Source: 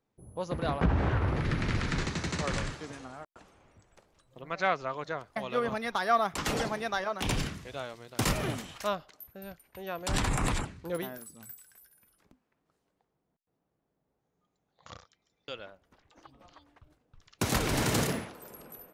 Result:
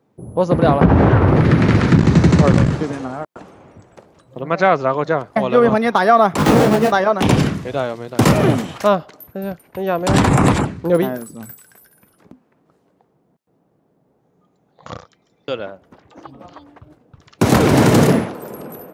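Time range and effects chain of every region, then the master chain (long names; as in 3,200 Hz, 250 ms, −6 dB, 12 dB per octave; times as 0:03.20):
0:01.91–0:02.83: low-shelf EQ 220 Hz +11 dB + saturating transformer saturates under 120 Hz
0:06.38–0:06.92: each half-wave held at its own peak + micro pitch shift up and down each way 27 cents
whole clip: high-pass filter 120 Hz 12 dB per octave; tilt shelving filter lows +6.5 dB, about 1,300 Hz; boost into a limiter +15.5 dB; level −1 dB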